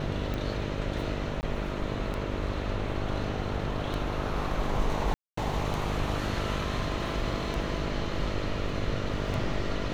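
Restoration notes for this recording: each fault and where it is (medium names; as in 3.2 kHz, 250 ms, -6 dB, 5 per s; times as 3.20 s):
buzz 50 Hz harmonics 13 -35 dBFS
tick 33 1/3 rpm -20 dBFS
1.41–1.43 s: dropout 19 ms
5.14–5.37 s: dropout 234 ms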